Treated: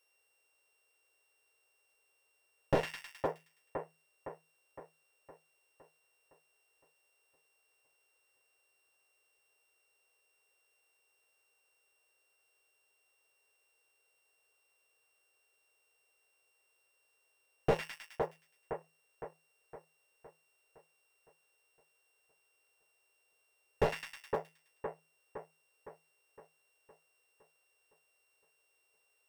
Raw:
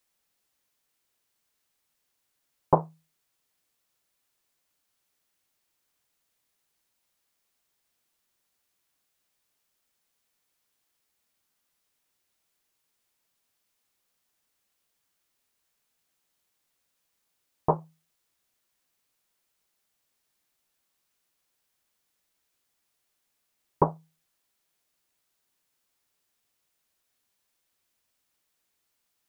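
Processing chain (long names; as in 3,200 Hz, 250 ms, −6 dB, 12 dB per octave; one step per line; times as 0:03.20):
samples sorted by size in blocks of 16 samples
low shelf with overshoot 330 Hz −9.5 dB, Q 3
hard clipping −19.5 dBFS, distortion −4 dB
echo with a time of its own for lows and highs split 1,500 Hz, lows 512 ms, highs 105 ms, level −7.5 dB
slew-rate limiting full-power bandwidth 36 Hz
level +1 dB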